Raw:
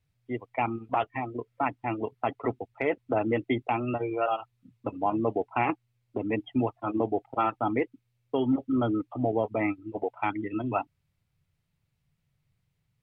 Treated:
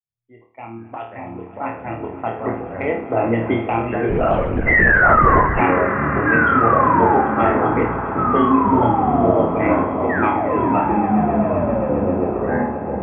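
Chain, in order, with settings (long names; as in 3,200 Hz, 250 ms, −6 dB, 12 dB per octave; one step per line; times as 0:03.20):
fade in at the beginning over 3.16 s
0:10.09–0:10.73: sound drawn into the spectrogram fall 240–2,000 Hz −30 dBFS
low-pass filter 2,700 Hz 12 dB per octave
0:04.66–0:05.42: sound drawn into the spectrogram fall 970–2,100 Hz −21 dBFS
flutter between parallel walls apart 4.5 metres, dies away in 0.45 s
delay with pitch and tempo change per echo 388 ms, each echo −4 semitones, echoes 3
echo that builds up and dies away 132 ms, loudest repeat 5, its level −17 dB
0:04.09–0:05.61: linear-prediction vocoder at 8 kHz whisper
level +5 dB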